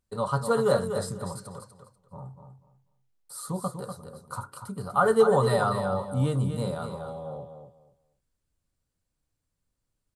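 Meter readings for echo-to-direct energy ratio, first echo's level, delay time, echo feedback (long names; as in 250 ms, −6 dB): −8.0 dB, −8.0 dB, 244 ms, 21%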